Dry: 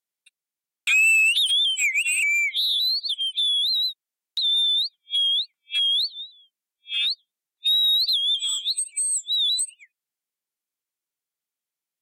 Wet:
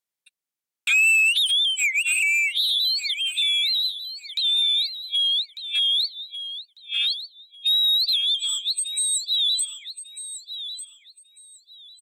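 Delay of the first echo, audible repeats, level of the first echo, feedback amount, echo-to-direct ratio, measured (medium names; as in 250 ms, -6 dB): 1197 ms, 2, -11.5 dB, 22%, -11.5 dB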